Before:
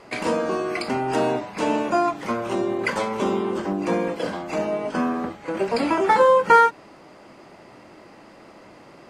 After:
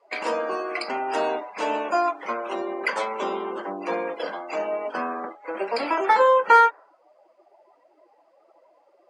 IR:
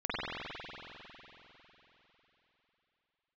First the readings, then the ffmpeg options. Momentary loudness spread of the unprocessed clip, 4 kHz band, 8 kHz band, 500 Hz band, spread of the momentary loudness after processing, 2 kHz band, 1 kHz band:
11 LU, -2.0 dB, no reading, -3.0 dB, 14 LU, -0.5 dB, -0.5 dB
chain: -af "highpass=500,afftdn=nr=23:nf=-40"

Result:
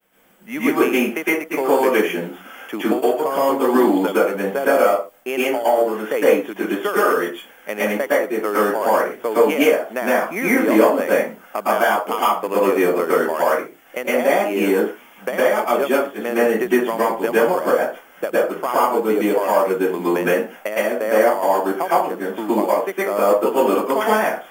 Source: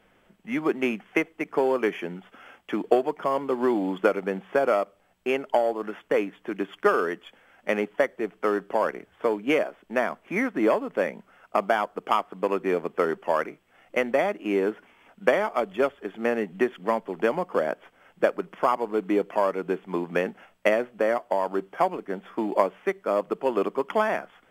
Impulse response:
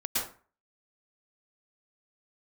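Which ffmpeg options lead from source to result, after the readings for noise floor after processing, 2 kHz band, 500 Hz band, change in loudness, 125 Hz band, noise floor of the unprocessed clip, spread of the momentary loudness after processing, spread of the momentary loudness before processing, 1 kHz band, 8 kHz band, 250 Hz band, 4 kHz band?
-46 dBFS, +8.0 dB, +7.5 dB, +8.0 dB, +5.5 dB, -63 dBFS, 7 LU, 7 LU, +8.0 dB, no reading, +8.0 dB, +9.5 dB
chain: -filter_complex "[0:a]aemphasis=mode=production:type=bsi,alimiter=limit=0.237:level=0:latency=1:release=456,equalizer=f=2400:w=0.37:g=-4,agate=range=0.0224:threshold=0.00126:ratio=3:detection=peak[s0];[1:a]atrim=start_sample=2205,afade=t=out:st=0.31:d=0.01,atrim=end_sample=14112[s1];[s0][s1]afir=irnorm=-1:irlink=0,volume=1.88"

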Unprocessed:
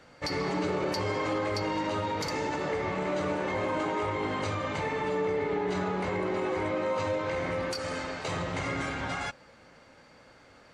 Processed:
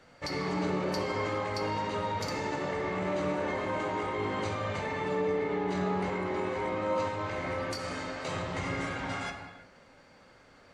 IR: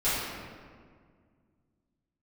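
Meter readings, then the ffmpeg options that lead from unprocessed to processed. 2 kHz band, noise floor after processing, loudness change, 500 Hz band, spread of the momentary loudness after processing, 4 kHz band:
-2.0 dB, -58 dBFS, -1.5 dB, -2.0 dB, 5 LU, -2.5 dB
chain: -filter_complex "[0:a]asplit=2[s0][s1];[1:a]atrim=start_sample=2205,afade=t=out:st=0.38:d=0.01,atrim=end_sample=17199,asetrate=39249,aresample=44100[s2];[s1][s2]afir=irnorm=-1:irlink=0,volume=0.178[s3];[s0][s3]amix=inputs=2:normalize=0,volume=0.596"

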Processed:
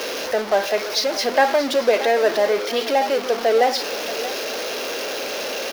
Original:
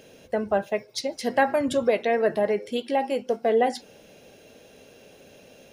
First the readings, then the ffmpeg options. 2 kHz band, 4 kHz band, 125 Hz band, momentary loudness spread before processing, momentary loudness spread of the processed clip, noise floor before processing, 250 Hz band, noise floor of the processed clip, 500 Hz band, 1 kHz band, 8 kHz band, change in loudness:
+8.0 dB, +14.0 dB, no reading, 8 LU, 8 LU, -53 dBFS, 0.0 dB, -28 dBFS, +5.5 dB, +6.0 dB, +12.5 dB, +4.5 dB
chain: -filter_complex "[0:a]aeval=exprs='val(0)+0.5*0.0668*sgn(val(0))':c=same,equalizer=f=130:t=o:w=1.3:g=-8.5,aexciter=amount=1.5:drive=2.2:freq=4500,asplit=2[s0][s1];[s1]acrusher=bits=2:mode=log:mix=0:aa=0.000001,volume=0.501[s2];[s0][s2]amix=inputs=2:normalize=0,acrossover=split=270 6800:gain=0.1 1 0.224[s3][s4][s5];[s3][s4][s5]amix=inputs=3:normalize=0,aecho=1:1:628:0.188"

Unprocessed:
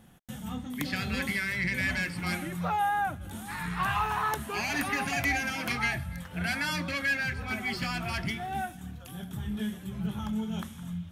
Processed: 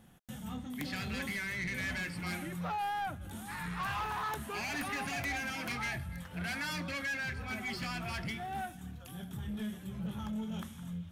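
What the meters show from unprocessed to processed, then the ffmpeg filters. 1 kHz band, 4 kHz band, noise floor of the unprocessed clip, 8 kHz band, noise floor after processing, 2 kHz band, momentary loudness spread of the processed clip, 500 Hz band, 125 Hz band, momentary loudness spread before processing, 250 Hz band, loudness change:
-7.0 dB, -5.5 dB, -45 dBFS, -5.0 dB, -48 dBFS, -7.0 dB, 8 LU, -5.5 dB, -5.5 dB, 10 LU, -5.5 dB, -6.5 dB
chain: -af "asoftclip=type=tanh:threshold=0.0398,volume=0.668"

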